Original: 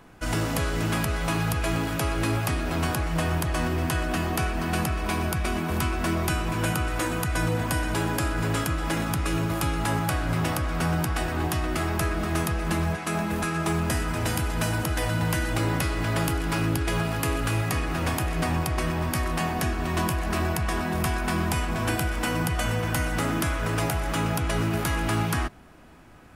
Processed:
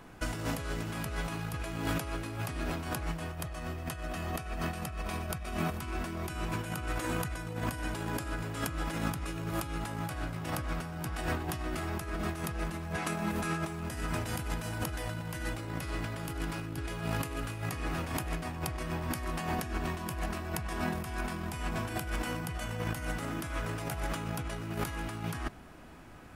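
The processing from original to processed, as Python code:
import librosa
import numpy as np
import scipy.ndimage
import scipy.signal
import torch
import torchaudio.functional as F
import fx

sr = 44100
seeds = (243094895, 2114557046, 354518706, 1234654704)

y = fx.comb(x, sr, ms=1.6, depth=0.31, at=(3.32, 5.78))
y = fx.over_compress(y, sr, threshold_db=-29.0, ratio=-0.5)
y = y * librosa.db_to_amplitude(-5.0)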